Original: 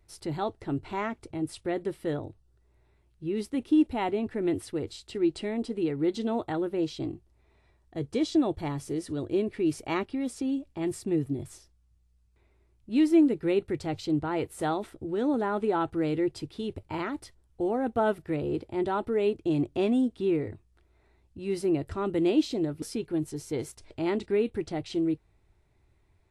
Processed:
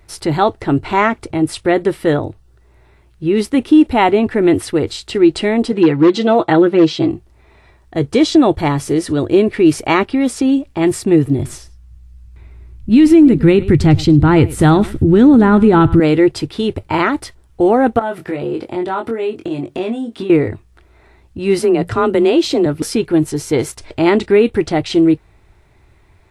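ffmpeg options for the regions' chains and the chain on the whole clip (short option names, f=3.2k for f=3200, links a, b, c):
-filter_complex "[0:a]asettb=1/sr,asplit=3[a][b][c];[a]atrim=end=5.724[d];[b]atrim=start=5.72:end=7.11,asetpts=PTS-STARTPTS,afade=t=in:d=0.004:c=qsin,afade=t=out:st=1.386:d=0.004:c=qsin,aecho=1:1:6:0.62,atrim=end_sample=61299,volume=18.5dB,asoftclip=hard,volume=-18.5dB,highpass=120,lowpass=6.2k[e];[c]atrim=start=7.106[f];[d][e]acrossfade=d=0.004:c1=hsin:c2=qsin[g];[g][f]acrossfade=d=0.004:c1=qsin:c2=hsin,asettb=1/sr,asplit=3[h][i][j];[h]atrim=end=11.174[k];[i]atrim=start=11.17:end=16,asetpts=PTS-STARTPTS,afade=t=in:d=0.004:c=qsin,afade=t=out:st=4.826:d=0.004:c=qsin,asubboost=boost=9.5:cutoff=210,aecho=1:1:103:0.1,atrim=end_sample=213003[l];[j]atrim=start=15.996[m];[k][l]acrossfade=d=0.004:c1=hsin:c2=qsin[n];[n][m]acrossfade=d=0.004:c1=qsin:c2=hsin,asettb=1/sr,asplit=3[o][p][q];[o]atrim=end=17.994[r];[p]atrim=start=17.99:end=20.3,asetpts=PTS-STARTPTS,afade=t=in:d=0.004:c=qsin,afade=t=out:st=2.306:d=0.004:c=qsin,highpass=150,acompressor=threshold=-36dB:ratio=6:attack=3.2:release=140:knee=1:detection=peak,asplit=2[s][t];[t]adelay=22,volume=-4.5dB[u];[s][u]amix=inputs=2:normalize=0,atrim=end_sample=101871[v];[q]atrim=start=20.296[w];[r][v]acrossfade=d=0.004:c1=hsin:c2=qsin[x];[x][w]acrossfade=d=0.004:c1=qsin:c2=hsin,asettb=1/sr,asplit=3[y][z][aa];[y]atrim=end=21.594[ab];[z]atrim=start=21.59:end=22.66,asetpts=PTS-STARTPTS,afade=t=in:d=0.004:c=qsin,afade=t=out:st=1.066:d=0.004:c=qsin,bandreject=f=50:t=h:w=6,bandreject=f=100:t=h:w=6,bandreject=f=150:t=h:w=6,acompressor=threshold=-26dB:ratio=2.5:attack=3.2:release=140:knee=1:detection=peak,afreqshift=28[ac];[aa]atrim=start=22.656[ad];[ab][ac]acrossfade=d=0.004:c1=hsin:c2=qsin[ae];[ae][ad]acrossfade=d=0.004:c1=qsin:c2=hsin,equalizer=f=1.5k:w=0.57:g=4.5,alimiter=level_in=16.5dB:limit=-1dB:release=50:level=0:latency=1,volume=-1dB"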